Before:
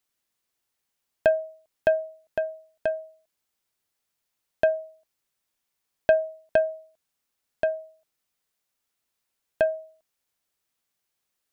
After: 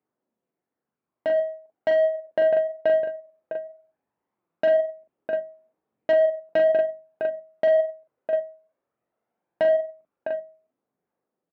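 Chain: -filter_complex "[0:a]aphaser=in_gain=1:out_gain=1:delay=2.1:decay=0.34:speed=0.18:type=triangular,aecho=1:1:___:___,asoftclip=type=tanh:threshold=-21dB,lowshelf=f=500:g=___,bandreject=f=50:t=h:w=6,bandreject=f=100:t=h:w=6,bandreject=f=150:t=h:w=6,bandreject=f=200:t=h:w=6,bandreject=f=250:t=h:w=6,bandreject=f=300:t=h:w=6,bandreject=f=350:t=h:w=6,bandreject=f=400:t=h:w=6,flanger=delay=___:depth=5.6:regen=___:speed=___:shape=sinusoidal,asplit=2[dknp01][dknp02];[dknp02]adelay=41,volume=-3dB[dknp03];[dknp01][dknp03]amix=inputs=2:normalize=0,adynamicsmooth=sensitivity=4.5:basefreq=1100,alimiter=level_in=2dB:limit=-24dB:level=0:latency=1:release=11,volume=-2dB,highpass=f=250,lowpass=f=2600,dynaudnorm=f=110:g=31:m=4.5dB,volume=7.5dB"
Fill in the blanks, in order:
656, 0.168, 9, 0.4, 57, 1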